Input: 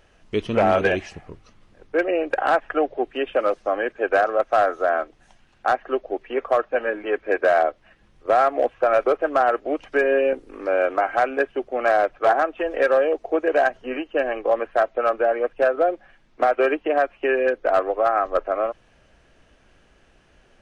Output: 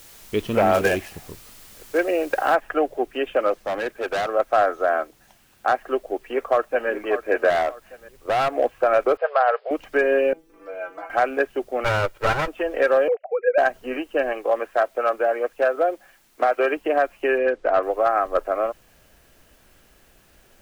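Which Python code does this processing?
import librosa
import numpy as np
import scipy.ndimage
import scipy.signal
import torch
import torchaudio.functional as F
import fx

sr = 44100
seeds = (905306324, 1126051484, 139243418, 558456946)

y = fx.dead_time(x, sr, dead_ms=0.07, at=(0.73, 1.97), fade=0.02)
y = fx.noise_floor_step(y, sr, seeds[0], at_s=2.55, before_db=-47, after_db=-61, tilt_db=0.0)
y = fx.clip_hard(y, sr, threshold_db=-21.5, at=(3.65, 4.28))
y = fx.highpass(y, sr, hz=52.0, slope=6, at=(4.98, 5.78))
y = fx.echo_throw(y, sr, start_s=6.29, length_s=0.61, ms=590, feedback_pct=30, wet_db=-10.5)
y = fx.clip_hard(y, sr, threshold_db=-17.5, at=(7.5, 8.5))
y = fx.brickwall_bandpass(y, sr, low_hz=420.0, high_hz=5200.0, at=(9.17, 9.71))
y = fx.stiff_resonator(y, sr, f0_hz=160.0, decay_s=0.25, stiffness=0.002, at=(10.33, 11.1))
y = fx.lower_of_two(y, sr, delay_ms=2.1, at=(11.84, 12.48))
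y = fx.sine_speech(y, sr, at=(13.08, 13.58))
y = fx.low_shelf(y, sr, hz=190.0, db=-11.0, at=(14.33, 16.77))
y = fx.air_absorb(y, sr, metres=110.0, at=(17.38, 17.83))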